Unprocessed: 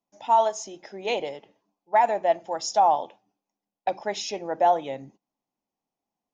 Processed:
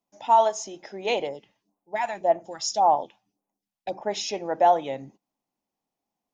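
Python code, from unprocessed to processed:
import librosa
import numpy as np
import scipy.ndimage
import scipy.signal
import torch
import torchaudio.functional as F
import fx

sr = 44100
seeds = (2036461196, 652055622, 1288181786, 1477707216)

y = fx.phaser_stages(x, sr, stages=2, low_hz=350.0, high_hz=4500.0, hz=1.8, feedback_pct=25, at=(1.26, 4.1), fade=0.02)
y = y * librosa.db_to_amplitude(1.5)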